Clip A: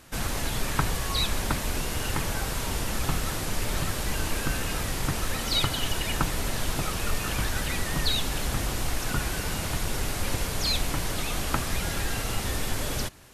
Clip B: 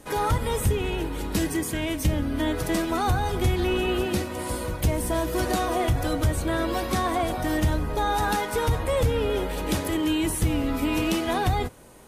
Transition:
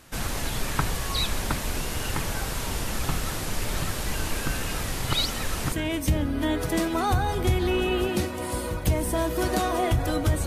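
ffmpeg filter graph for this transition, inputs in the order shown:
-filter_complex "[0:a]apad=whole_dur=10.46,atrim=end=10.46,asplit=2[a][b];[a]atrim=end=5.052[c];[b]atrim=start=5.048:end=5.722,asetpts=PTS-STARTPTS,areverse[d];[1:a]atrim=start=1.688:end=6.43[e];[c][d]acrossfade=d=0.004:c1=hsin:c2=hsin[f];[f][e]acrossfade=d=0.004:c1=hsin:c2=hsin"

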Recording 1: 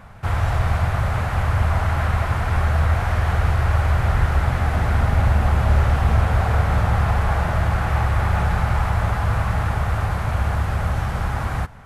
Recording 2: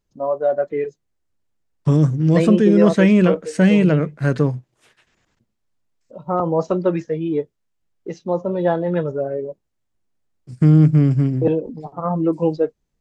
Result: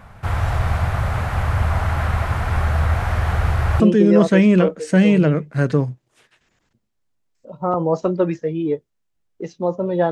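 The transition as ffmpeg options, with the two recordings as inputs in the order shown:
-filter_complex "[0:a]apad=whole_dur=10.11,atrim=end=10.11,atrim=end=3.802[a];[1:a]atrim=start=2.458:end=8.77[b];[a][b]acrossfade=d=0.004:c1=hsin:c2=hsin"

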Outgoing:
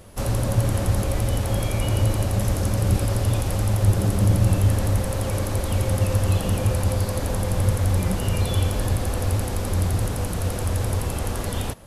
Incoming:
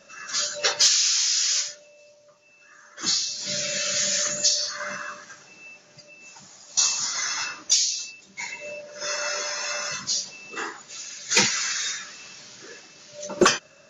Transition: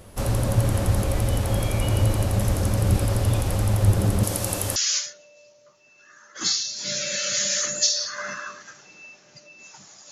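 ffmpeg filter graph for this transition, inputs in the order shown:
-filter_complex "[0:a]asettb=1/sr,asplit=3[a][b][c];[a]atrim=end=4.234[d];[b]atrim=start=4.23:end=4.76,asetpts=PTS-STARTPTS,afade=t=in:d=0.004:c=qsin,afade=t=out:st=0.526:d=0.004:c=qsin,bass=f=250:g=-14,treble=f=4k:g=9[e];[c]atrim=start=4.756[f];[d][e]acrossfade=d=0.004:c1=hsin:c2=qsin[g];[g][f]acrossfade=d=0.004:c1=qsin:c2=hsin,apad=whole_dur=10.11,atrim=end=10.11,atrim=end=4.762[h];[1:a]atrim=start=1.378:end=6.73[i];[h][i]acrossfade=d=0.004:c1=hsin:c2=hsin"

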